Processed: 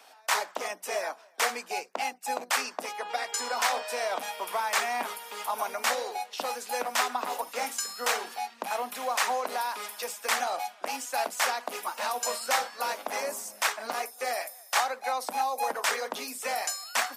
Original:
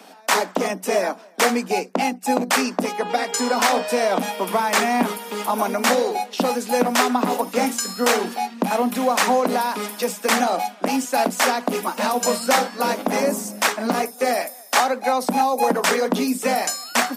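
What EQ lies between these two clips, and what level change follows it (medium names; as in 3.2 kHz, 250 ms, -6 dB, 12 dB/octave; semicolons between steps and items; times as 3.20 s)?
high-pass 710 Hz 12 dB/octave; -7.0 dB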